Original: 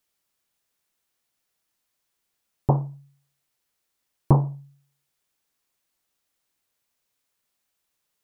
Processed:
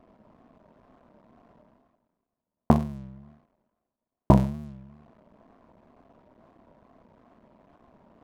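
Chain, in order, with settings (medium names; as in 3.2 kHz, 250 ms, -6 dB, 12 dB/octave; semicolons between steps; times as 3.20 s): cycle switcher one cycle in 2, muted; level-controlled noise filter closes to 680 Hz, open at -28.5 dBFS; in parallel at -2 dB: compression, threshold -31 dBFS, peak gain reduction 17 dB; on the sum: small resonant body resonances 230/650/1000 Hz, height 10 dB, ringing for 40 ms; wow and flutter 120 cents; reverse; upward compressor, threshold -31 dBFS; reverse; trim -1.5 dB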